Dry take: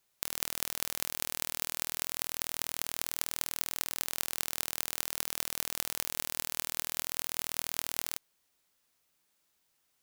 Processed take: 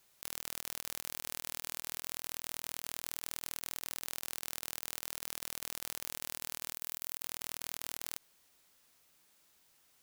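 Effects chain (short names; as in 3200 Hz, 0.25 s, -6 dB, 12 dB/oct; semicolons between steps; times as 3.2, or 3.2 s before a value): 6.74–7.23 high shelf 10000 Hz +7 dB; negative-ratio compressor -39 dBFS, ratio -0.5; limiter -17 dBFS, peak gain reduction 10.5 dB; gain +5 dB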